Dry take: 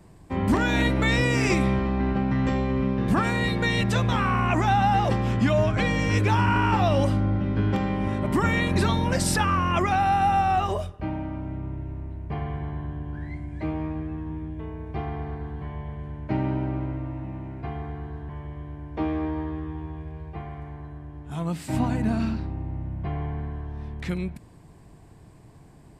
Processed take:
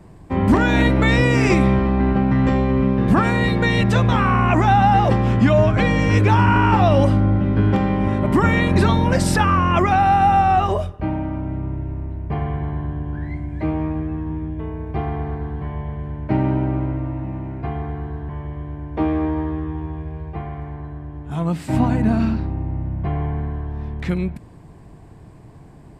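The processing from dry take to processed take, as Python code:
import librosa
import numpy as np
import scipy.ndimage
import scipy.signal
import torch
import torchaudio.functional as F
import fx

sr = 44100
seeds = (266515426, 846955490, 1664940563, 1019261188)

y = fx.high_shelf(x, sr, hz=3000.0, db=-8.0)
y = F.gain(torch.from_numpy(y), 7.0).numpy()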